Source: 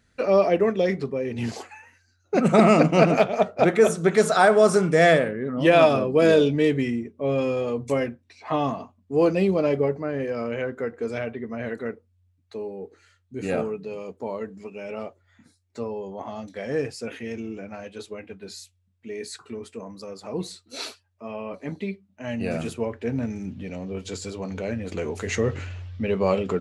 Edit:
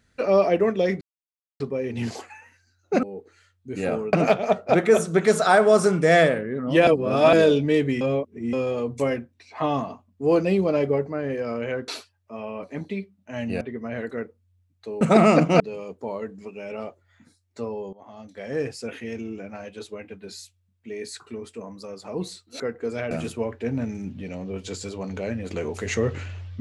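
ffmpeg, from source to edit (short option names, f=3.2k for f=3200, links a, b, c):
-filter_complex "[0:a]asplit=15[a][b][c][d][e][f][g][h][i][j][k][l][m][n][o];[a]atrim=end=1.01,asetpts=PTS-STARTPTS,afade=t=out:st=1.006:d=0.004:c=hsin,apad=pad_dur=0.59[p];[b]atrim=start=1.01:end=2.442,asetpts=PTS-STARTPTS,afade=t=in:d=0.004:c=hsin[q];[c]atrim=start=12.688:end=13.792[r];[d]atrim=start=3.028:end=5.772[s];[e]atrim=start=5.768:end=6.232,asetpts=PTS-STARTPTS,areverse[t];[f]atrim=start=6.228:end=6.912[u];[g]atrim=start=6.908:end=7.432,asetpts=PTS-STARTPTS,areverse[v];[h]atrim=start=7.428:end=10.782[w];[i]atrim=start=20.788:end=22.522[x];[j]atrim=start=11.288:end=12.692[y];[k]atrim=start=2.438:end=3.032[z];[l]atrim=start=13.788:end=16.12,asetpts=PTS-STARTPTS,afade=t=out:st=2.328:d=0.004:c=hsin:silence=0.11885[aa];[m]atrim=start=16.12:end=20.792,asetpts=PTS-STARTPTS,afade=t=in:d=0.75:silence=0.11885[ab];[n]atrim=start=10.778:end=11.292[ac];[o]atrim=start=22.518[ad];[p][q]concat=n=2:v=0:a=1[ae];[ae][r]acrossfade=d=0.004:c1=hsin:c2=hsin[af];[af][s]acrossfade=d=0.004:c1=hsin:c2=hsin[ag];[ag][t]acrossfade=d=0.004:c1=hsin:c2=hsin[ah];[ah][u]acrossfade=d=0.004:c1=hsin:c2=hsin[ai];[ai][v]acrossfade=d=0.004:c1=hsin:c2=hsin[aj];[aj][w]acrossfade=d=0.004:c1=hsin:c2=hsin[ak];[ak][x]acrossfade=d=0.004:c1=hsin:c2=hsin[al];[al][y]acrossfade=d=0.004:c1=hsin:c2=hsin[am];[am][z]acrossfade=d=0.004:c1=hsin:c2=hsin[an];[aa][ab]concat=n=2:v=0:a=1[ao];[an][ao]acrossfade=d=0.004:c1=hsin:c2=hsin[ap];[ap][ac]acrossfade=d=0.004:c1=hsin:c2=hsin[aq];[aq][ad]acrossfade=d=0.004:c1=hsin:c2=hsin"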